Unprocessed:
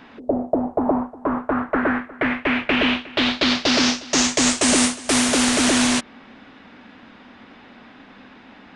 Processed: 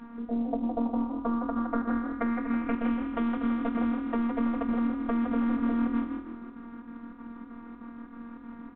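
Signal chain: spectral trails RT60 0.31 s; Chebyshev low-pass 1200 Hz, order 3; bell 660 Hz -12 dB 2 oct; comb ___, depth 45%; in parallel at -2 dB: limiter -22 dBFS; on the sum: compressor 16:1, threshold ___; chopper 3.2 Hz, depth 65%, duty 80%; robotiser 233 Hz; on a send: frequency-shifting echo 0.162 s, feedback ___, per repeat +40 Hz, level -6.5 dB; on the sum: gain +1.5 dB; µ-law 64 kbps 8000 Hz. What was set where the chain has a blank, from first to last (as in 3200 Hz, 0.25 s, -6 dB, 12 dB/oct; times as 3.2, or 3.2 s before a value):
3.4 ms, -25 dBFS, 31%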